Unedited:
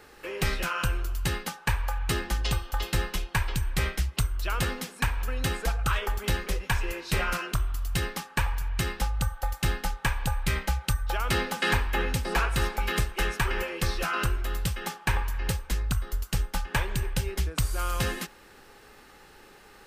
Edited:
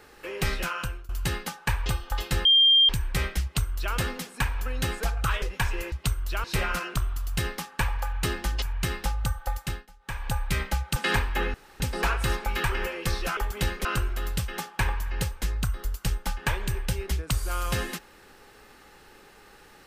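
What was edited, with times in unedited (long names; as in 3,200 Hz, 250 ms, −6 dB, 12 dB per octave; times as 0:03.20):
0:00.66–0:01.09: fade out, to −21.5 dB
0:01.86–0:02.48: move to 0:08.58
0:03.07–0:03.51: beep over 3,190 Hz −14.5 dBFS
0:04.05–0:04.57: duplicate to 0:07.02
0:06.04–0:06.52: move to 0:14.13
0:09.49–0:10.29: duck −23.5 dB, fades 0.34 s
0:10.92–0:11.54: remove
0:12.12: splice in room tone 0.26 s
0:12.96–0:13.40: remove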